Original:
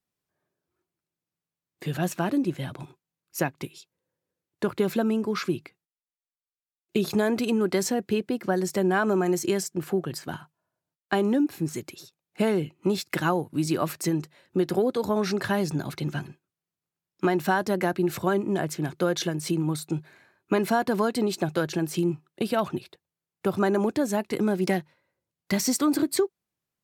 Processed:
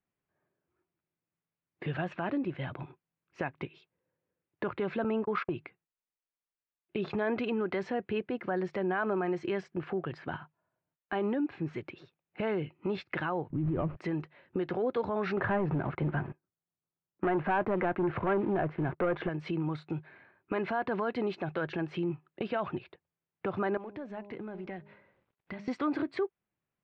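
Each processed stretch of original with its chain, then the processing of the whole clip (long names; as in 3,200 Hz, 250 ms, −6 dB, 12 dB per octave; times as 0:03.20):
0:05.04–0:05.54: noise gate −31 dBFS, range −42 dB + parametric band 790 Hz +6 dB 1.6 octaves
0:13.50–0:13.97: running median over 25 samples + spectral tilt −4.5 dB per octave
0:15.37–0:19.29: low-pass filter 1,400 Hz + leveller curve on the samples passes 2
0:23.77–0:25.68: mu-law and A-law mismatch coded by mu + hum removal 203.7 Hz, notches 5 + downward compressor 2 to 1, threshold −48 dBFS
whole clip: brickwall limiter −19 dBFS; low-pass filter 2,700 Hz 24 dB per octave; dynamic equaliser 220 Hz, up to −7 dB, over −40 dBFS, Q 0.73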